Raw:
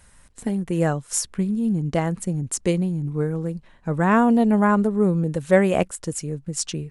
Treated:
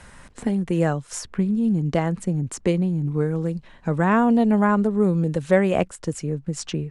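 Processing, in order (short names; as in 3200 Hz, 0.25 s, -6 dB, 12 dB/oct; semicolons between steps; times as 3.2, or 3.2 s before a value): air absorption 56 m; three-band squash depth 40%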